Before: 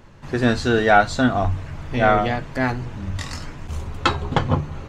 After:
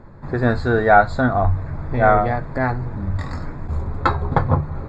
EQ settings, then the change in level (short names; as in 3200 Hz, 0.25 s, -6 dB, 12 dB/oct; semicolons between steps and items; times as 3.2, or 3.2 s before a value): dynamic EQ 270 Hz, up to -7 dB, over -33 dBFS, Q 0.91; running mean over 15 samples; +5.0 dB